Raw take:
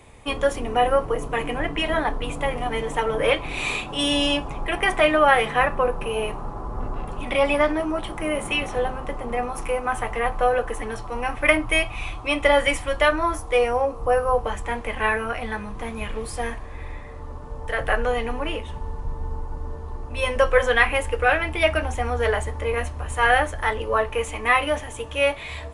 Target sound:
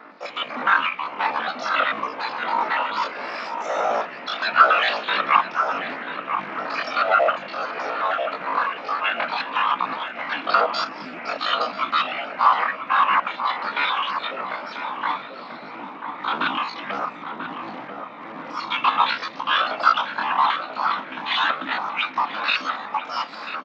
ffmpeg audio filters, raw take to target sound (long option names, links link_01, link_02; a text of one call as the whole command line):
ffmpeg -i in.wav -filter_complex "[0:a]aecho=1:1:6.3:0.5,adynamicequalizer=threshold=0.0178:dfrequency=1300:dqfactor=2.4:tfrequency=1300:tqfactor=2.4:attack=5:release=100:ratio=0.375:range=3:mode=boostabove:tftype=bell,asplit=2[link_01][link_02];[link_02]acompressor=threshold=-29dB:ratio=5,volume=-0.5dB[link_03];[link_01][link_03]amix=inputs=2:normalize=0,aeval=exprs='(tanh(2*val(0)+0.1)-tanh(0.1))/2':channel_layout=same,acrossover=split=1300[link_04][link_05];[link_04]aeval=exprs='val(0)*(1-0.7/2+0.7/2*cos(2*PI*1.4*n/s))':channel_layout=same[link_06];[link_05]aeval=exprs='val(0)*(1-0.7/2-0.7/2*cos(2*PI*1.4*n/s))':channel_layout=same[link_07];[link_06][link_07]amix=inputs=2:normalize=0,afftfilt=real='hypot(re,im)*cos(2*PI*random(0))':imag='hypot(re,im)*sin(2*PI*random(1))':win_size=512:overlap=0.75,aphaser=in_gain=1:out_gain=1:delay=4.9:decay=0.29:speed=0.17:type=triangular,asetrate=85689,aresample=44100,atempo=0.514651,acrusher=bits=4:mode=log:mix=0:aa=0.000001,asplit=2[link_08][link_09];[link_09]adelay=1076,lowpass=frequency=1000:poles=1,volume=-5dB,asplit=2[link_10][link_11];[link_11]adelay=1076,lowpass=frequency=1000:poles=1,volume=0.48,asplit=2[link_12][link_13];[link_13]adelay=1076,lowpass=frequency=1000:poles=1,volume=0.48,asplit=2[link_14][link_15];[link_15]adelay=1076,lowpass=frequency=1000:poles=1,volume=0.48,asplit=2[link_16][link_17];[link_17]adelay=1076,lowpass=frequency=1000:poles=1,volume=0.48,asplit=2[link_18][link_19];[link_19]adelay=1076,lowpass=frequency=1000:poles=1,volume=0.48[link_20];[link_10][link_12][link_14][link_16][link_18][link_20]amix=inputs=6:normalize=0[link_21];[link_08][link_21]amix=inputs=2:normalize=0,asetrate=48000,aresample=44100,highpass=frequency=270:width=0.5412,highpass=frequency=270:width=1.3066,equalizer=frequency=380:width_type=q:width=4:gain=-7,equalizer=frequency=650:width_type=q:width=4:gain=4,equalizer=frequency=1300:width_type=q:width=4:gain=7,lowpass=frequency=3600:width=0.5412,lowpass=frequency=3600:width=1.3066,volume=4dB" out.wav